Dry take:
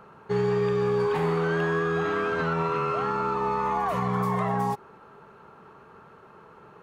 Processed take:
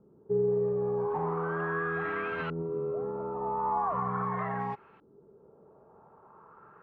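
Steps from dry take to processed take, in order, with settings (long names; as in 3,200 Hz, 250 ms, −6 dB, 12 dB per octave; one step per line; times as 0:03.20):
auto-filter low-pass saw up 0.4 Hz 310–2,900 Hz
level −8.5 dB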